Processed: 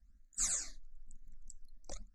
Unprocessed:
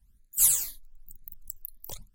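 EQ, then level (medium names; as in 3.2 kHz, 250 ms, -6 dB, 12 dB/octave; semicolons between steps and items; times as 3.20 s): steep low-pass 6.9 kHz 36 dB/octave; static phaser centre 620 Hz, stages 8; 0.0 dB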